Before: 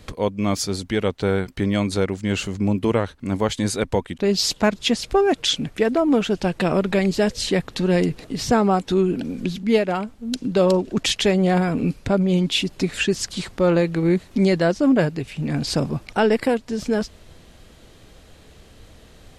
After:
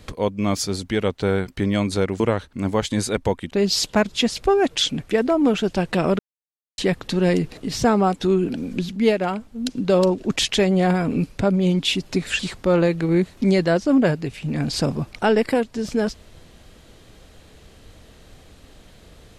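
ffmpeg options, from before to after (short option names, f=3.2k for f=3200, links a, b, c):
-filter_complex "[0:a]asplit=5[a][b][c][d][e];[a]atrim=end=2.202[f];[b]atrim=start=2.868:end=6.86,asetpts=PTS-STARTPTS,afade=t=out:st=3.988:d=0.004:c=hsin[g];[c]atrim=start=6.86:end=7.45,asetpts=PTS-STARTPTS,volume=0[h];[d]atrim=start=7.45:end=13.062,asetpts=PTS-STARTPTS,afade=t=in:d=0.004:c=hsin[i];[e]atrim=start=13.328[j];[g][h][i]concat=n=3:v=0:a=1[k];[f][k]acrossfade=d=0.004:c1=hsin:c2=hsin[l];[l][j]acrossfade=d=0.004:c1=hsin:c2=hsin"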